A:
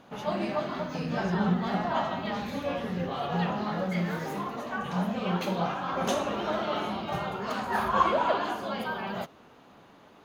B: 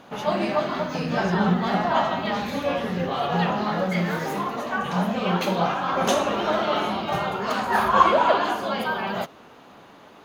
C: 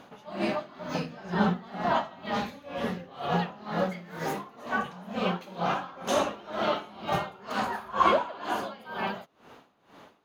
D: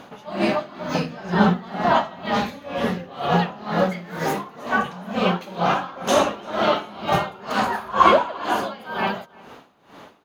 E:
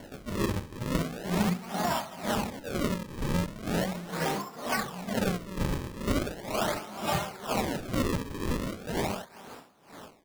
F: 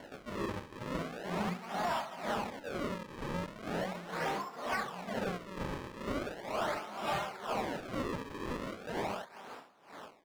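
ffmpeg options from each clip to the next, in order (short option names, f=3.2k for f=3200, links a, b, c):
-af "lowshelf=f=230:g=-5,volume=7.5dB"
-af "aeval=exprs='val(0)*pow(10,-21*(0.5-0.5*cos(2*PI*2.1*n/s))/20)':c=same,volume=-1.5dB"
-filter_complex "[0:a]asplit=2[a][b];[b]adelay=344,volume=-24dB,highshelf=f=4k:g=-7.74[c];[a][c]amix=inputs=2:normalize=0,volume=8dB"
-filter_complex "[0:a]acrossover=split=140|3000[a][b][c];[b]acompressor=threshold=-24dB:ratio=10[d];[a][d][c]amix=inputs=3:normalize=0,acrusher=samples=35:mix=1:aa=0.000001:lfo=1:lforange=56:lforate=0.39,volume=-2.5dB"
-filter_complex "[0:a]asplit=2[a][b];[b]highpass=f=720:p=1,volume=15dB,asoftclip=type=tanh:threshold=-15.5dB[c];[a][c]amix=inputs=2:normalize=0,lowpass=f=2.3k:p=1,volume=-6dB,volume=-8dB"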